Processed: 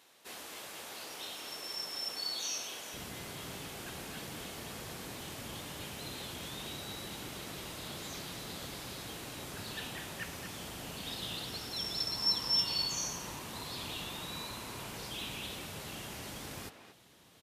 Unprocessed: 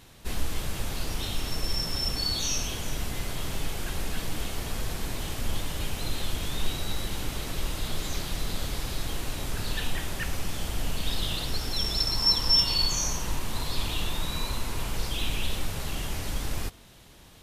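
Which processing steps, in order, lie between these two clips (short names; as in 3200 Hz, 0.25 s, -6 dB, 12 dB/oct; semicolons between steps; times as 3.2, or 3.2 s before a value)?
HPF 420 Hz 12 dB/oct, from 2.94 s 130 Hz; speakerphone echo 0.23 s, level -8 dB; gain -7.5 dB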